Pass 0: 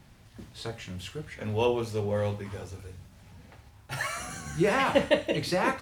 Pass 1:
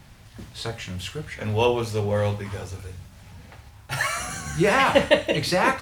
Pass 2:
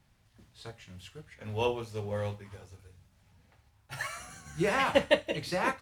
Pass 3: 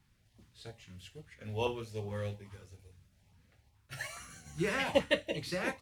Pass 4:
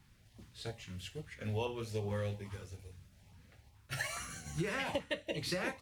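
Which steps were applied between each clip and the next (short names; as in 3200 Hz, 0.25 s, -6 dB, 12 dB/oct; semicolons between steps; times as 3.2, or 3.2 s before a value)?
bell 300 Hz -4.5 dB 1.8 oct; gain +7.5 dB
upward expander 1.5:1, over -37 dBFS; gain -6 dB
LFO notch saw up 2.4 Hz 540–1700 Hz; gain -2.5 dB
compressor 16:1, threshold -38 dBFS, peak gain reduction 18 dB; gain +5.5 dB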